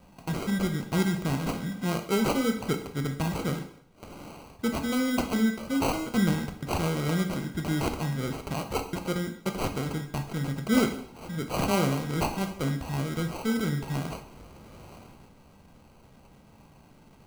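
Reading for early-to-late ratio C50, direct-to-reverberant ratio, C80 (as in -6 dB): 9.5 dB, 5.5 dB, 13.0 dB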